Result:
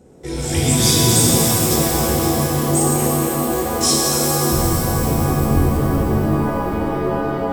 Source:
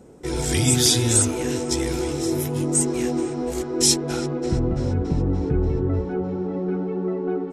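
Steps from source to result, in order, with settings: peaking EQ 1.1 kHz -4.5 dB 0.77 oct; pitch-shifted reverb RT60 3.6 s, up +7 st, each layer -2 dB, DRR -3.5 dB; trim -1.5 dB

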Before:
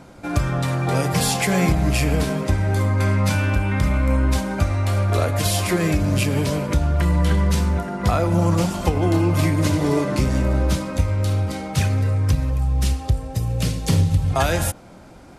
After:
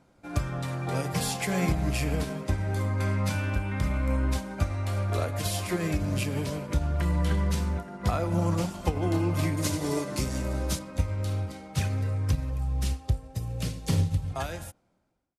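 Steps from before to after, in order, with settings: fade out at the end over 1.43 s; 9.57–10.79 s: tone controls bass -2 dB, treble +9 dB; upward expansion 1.5:1, over -37 dBFS; trim -6 dB

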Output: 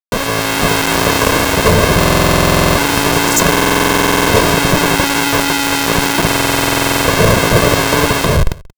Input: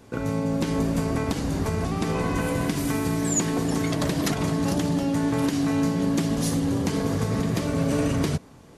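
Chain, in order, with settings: in parallel at 0 dB: peak limiter -21 dBFS, peak gain reduction 10 dB; on the sum: bass shelf 71 Hz -3.5 dB; hum notches 50/100/150/200/250/300/350/400 Hz; small resonant body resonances 260/1300 Hz, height 17 dB, ringing for 70 ms; Schmitt trigger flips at -26.5 dBFS; comb 1.9 ms, depth 74%; crossover distortion -32 dBFS; on a send: delay 181 ms -23.5 dB; on the sum: level rider; buffer glitch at 1.98/3.50/6.27 s, samples 2048, times 16; trim -1 dB

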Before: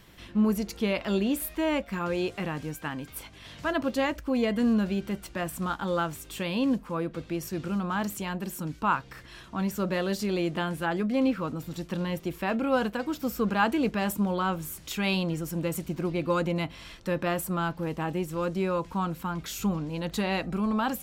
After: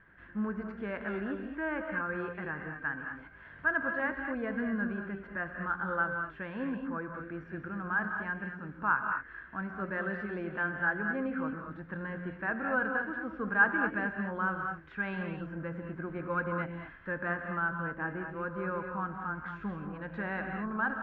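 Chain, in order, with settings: four-pole ladder low-pass 1.7 kHz, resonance 80%; gated-style reverb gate 250 ms rising, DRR 4 dB; trim +2 dB

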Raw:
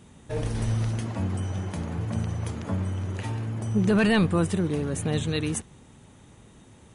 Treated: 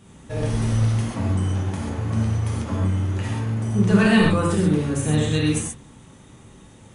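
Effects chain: gated-style reverb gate 160 ms flat, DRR -3.5 dB

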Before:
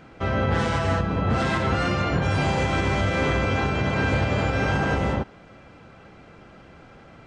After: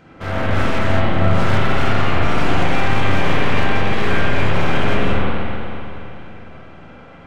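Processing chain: one-sided wavefolder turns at -25.5 dBFS; spring tank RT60 3 s, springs 41/53 ms, chirp 75 ms, DRR -7 dB; trim -1 dB

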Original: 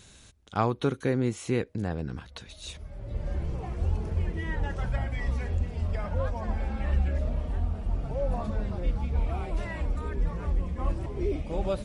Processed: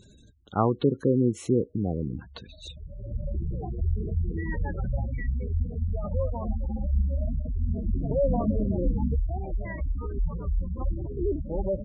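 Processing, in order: peaking EQ 290 Hz +5 dB 2.4 oct, from 7.68 s +12 dB, from 9.15 s +2.5 dB; spectral gate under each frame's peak -15 dB strong

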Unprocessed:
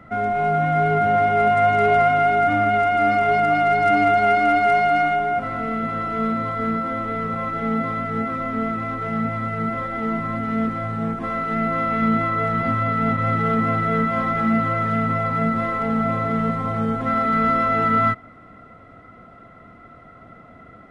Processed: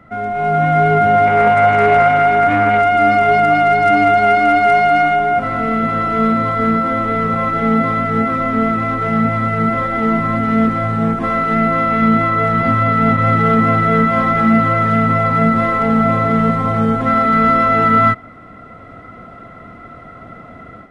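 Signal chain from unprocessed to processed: level rider gain up to 9 dB; 1.26–2.82 s: loudspeaker Doppler distortion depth 0.11 ms

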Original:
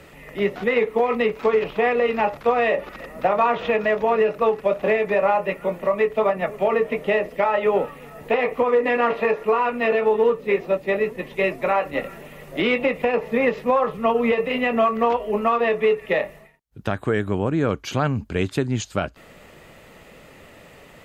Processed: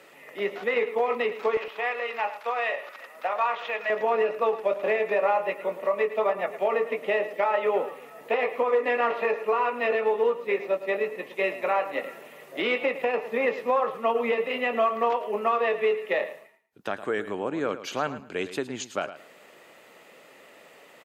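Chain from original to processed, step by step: high-pass 380 Hz 12 dB/octave, from 1.57 s 820 Hz, from 3.90 s 350 Hz; feedback delay 109 ms, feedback 21%, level -13 dB; trim -4 dB

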